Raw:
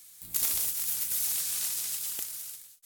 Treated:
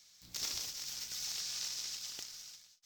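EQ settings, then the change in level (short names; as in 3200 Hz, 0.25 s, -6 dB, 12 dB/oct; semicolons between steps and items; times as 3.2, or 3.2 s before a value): resonant high shelf 7600 Hz -13 dB, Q 3; -6.0 dB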